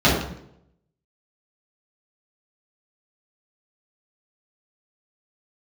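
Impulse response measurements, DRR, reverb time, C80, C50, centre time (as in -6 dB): -9.0 dB, 0.75 s, 6.0 dB, 3.0 dB, 49 ms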